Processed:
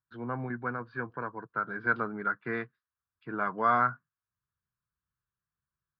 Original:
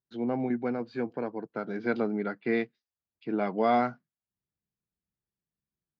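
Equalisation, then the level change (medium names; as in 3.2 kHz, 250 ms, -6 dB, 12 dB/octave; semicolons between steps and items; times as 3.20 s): low-pass 3.6 kHz 12 dB/octave; resonant low shelf 160 Hz +8.5 dB, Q 1.5; high-order bell 1.3 kHz +16 dB 1 oct; -6.5 dB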